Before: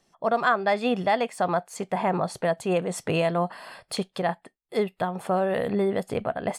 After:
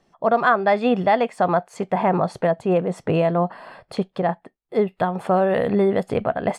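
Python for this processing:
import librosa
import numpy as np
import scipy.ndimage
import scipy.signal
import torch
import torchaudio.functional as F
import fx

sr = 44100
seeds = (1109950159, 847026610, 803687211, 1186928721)

y = fx.lowpass(x, sr, hz=fx.steps((0.0, 1900.0), (2.47, 1000.0), (4.89, 2800.0)), slope=6)
y = y * 10.0 ** (6.0 / 20.0)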